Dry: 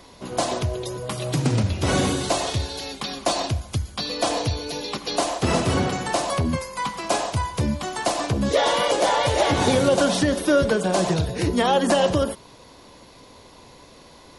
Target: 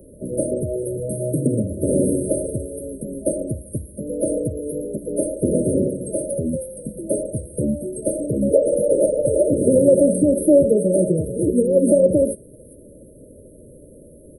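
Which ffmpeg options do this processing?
ffmpeg -i in.wav -filter_complex "[0:a]asettb=1/sr,asplit=3[link_01][link_02][link_03];[link_01]atrim=end=5.904[link_04];[link_02]atrim=start=5.9:end=6.85,asetpts=PTS-STARTPTS,afade=type=in:duration=0.004:curve=qsin,afade=type=out:start_time=0.946:duration=0.004:curve=qsin,lowshelf=frequency=430:gain=-4[link_05];[link_03]atrim=start=6.846[link_06];[link_04][link_05]acrossfade=duration=0.004:curve1=hsin:curve2=qsin[link_07];[link_07][link_06]acrossfade=duration=0.004:curve1=qsin:curve2=hsin,afftfilt=real='re*(1-between(b*sr/4096,640,8400))':imag='im*(1-between(b*sr/4096,640,8400))':win_size=4096:overlap=0.75,acrossover=split=180|2200[link_08][link_09][link_10];[link_08]acompressor=threshold=-37dB:ratio=6[link_11];[link_10]aecho=1:1:401:0.15[link_12];[link_11][link_09][link_12]amix=inputs=3:normalize=0,volume=6dB" out.wav

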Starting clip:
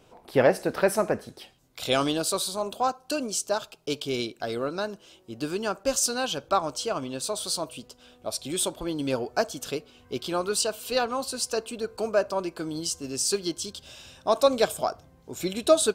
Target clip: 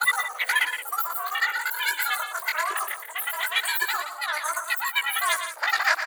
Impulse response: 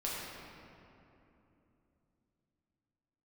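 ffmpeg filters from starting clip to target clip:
-filter_complex "[0:a]areverse,asplit=2[link_01][link_02];[link_02]alimiter=limit=-15dB:level=0:latency=1:release=272,volume=0.5dB[link_03];[link_01][link_03]amix=inputs=2:normalize=0,asetrate=115983,aresample=44100,flanger=delay=16:depth=5.8:speed=0.21,afreqshift=300,asplit=2[link_04][link_05];[link_05]aecho=0:1:116.6|172:0.355|0.251[link_06];[link_04][link_06]amix=inputs=2:normalize=0,volume=-1.5dB"

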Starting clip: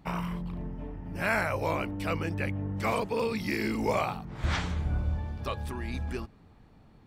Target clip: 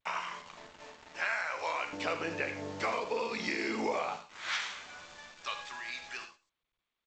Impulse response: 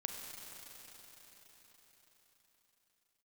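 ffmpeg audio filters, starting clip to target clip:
-filter_complex "[0:a]agate=range=-6dB:threshold=-53dB:ratio=16:detection=peak,asetnsamples=nb_out_samples=441:pad=0,asendcmd='1.93 highpass f 390;4.16 highpass f 1500',highpass=1000,acompressor=threshold=-34dB:ratio=10,acrusher=bits=8:mix=0:aa=0.000001,asplit=2[link_01][link_02];[link_02]adelay=12,volume=-11dB[link_03];[link_01][link_03]amix=inputs=2:normalize=0,asplit=2[link_04][link_05];[link_05]adelay=122.4,volume=-23dB,highshelf=frequency=4000:gain=-2.76[link_06];[link_04][link_06]amix=inputs=2:normalize=0[link_07];[1:a]atrim=start_sample=2205,afade=type=out:start_time=0.16:duration=0.01,atrim=end_sample=7497[link_08];[link_07][link_08]afir=irnorm=-1:irlink=0,volume=6.5dB" -ar 16000 -c:a g722

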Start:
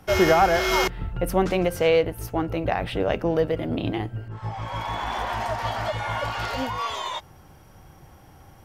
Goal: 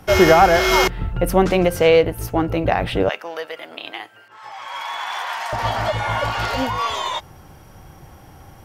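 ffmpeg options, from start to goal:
ffmpeg -i in.wav -filter_complex "[0:a]asettb=1/sr,asplit=3[link_01][link_02][link_03];[link_01]atrim=end=3.094[link_04];[link_02]atrim=start=3.09:end=5.53,asetpts=PTS-STARTPTS,afade=type=in:duration=0.004:curve=qsin,afade=type=out:start_time=2.436:duration=0.004:curve=qsin,highpass=1100[link_05];[link_03]atrim=start=5.526[link_06];[link_04][link_05]acrossfade=duration=0.004:curve1=hsin:curve2=qsin[link_07];[link_07][link_06]acrossfade=duration=0.004:curve1=qsin:curve2=hsin,volume=6dB" out.wav

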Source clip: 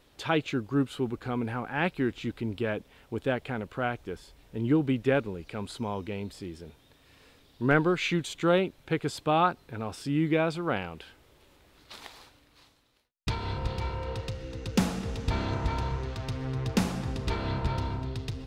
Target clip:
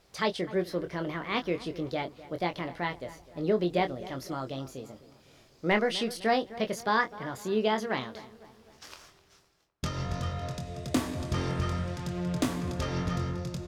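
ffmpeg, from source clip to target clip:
ffmpeg -i in.wav -filter_complex "[0:a]lowpass=11000,asplit=2[link_01][link_02];[link_02]adelay=31,volume=-7.5dB[link_03];[link_01][link_03]amix=inputs=2:normalize=0,asplit=2[link_04][link_05];[link_05]adelay=344,lowpass=frequency=1500:poles=1,volume=-16.5dB,asplit=2[link_06][link_07];[link_07]adelay=344,lowpass=frequency=1500:poles=1,volume=0.49,asplit=2[link_08][link_09];[link_09]adelay=344,lowpass=frequency=1500:poles=1,volume=0.49,asplit=2[link_10][link_11];[link_11]adelay=344,lowpass=frequency=1500:poles=1,volume=0.49[link_12];[link_06][link_08][link_10][link_12]amix=inputs=4:normalize=0[link_13];[link_04][link_13]amix=inputs=2:normalize=0,asetrate=59535,aresample=44100,volume=-2.5dB" out.wav

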